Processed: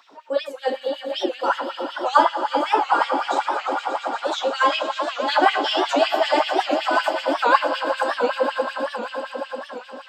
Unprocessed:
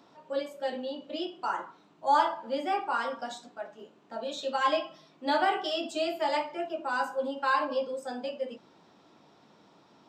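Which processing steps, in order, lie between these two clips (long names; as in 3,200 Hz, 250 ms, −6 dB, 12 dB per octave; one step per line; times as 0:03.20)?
echo that builds up and dies away 117 ms, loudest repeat 5, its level −11.5 dB
auto-filter high-pass sine 5.3 Hz 290–2,800 Hz
wow of a warped record 78 rpm, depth 160 cents
level +6.5 dB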